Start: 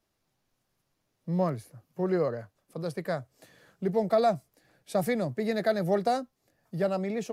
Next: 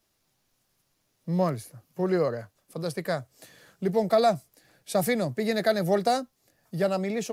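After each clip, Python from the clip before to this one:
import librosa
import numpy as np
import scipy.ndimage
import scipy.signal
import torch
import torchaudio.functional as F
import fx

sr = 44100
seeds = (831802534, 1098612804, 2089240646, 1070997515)

y = fx.high_shelf(x, sr, hz=2800.0, db=7.5)
y = y * librosa.db_to_amplitude(2.0)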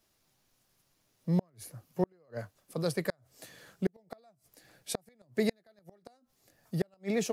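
y = fx.gate_flip(x, sr, shuts_db=-17.0, range_db=-40)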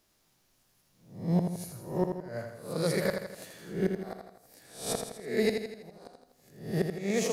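y = fx.spec_swells(x, sr, rise_s=0.49)
y = fx.echo_feedback(y, sr, ms=82, feedback_pct=52, wet_db=-6.0)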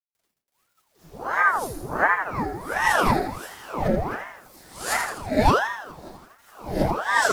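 y = fx.quant_dither(x, sr, seeds[0], bits=10, dither='none')
y = fx.room_shoebox(y, sr, seeds[1], volume_m3=130.0, walls='furnished', distance_m=4.8)
y = fx.ring_lfo(y, sr, carrier_hz=790.0, swing_pct=80, hz=1.4)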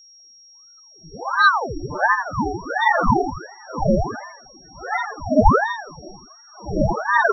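y = np.repeat(scipy.signal.resample_poly(x, 1, 8), 8)[:len(x)]
y = fx.spec_topn(y, sr, count=8)
y = y + 10.0 ** (-53.0 / 20.0) * np.sin(2.0 * np.pi * 5600.0 * np.arange(len(y)) / sr)
y = y * librosa.db_to_amplitude(7.0)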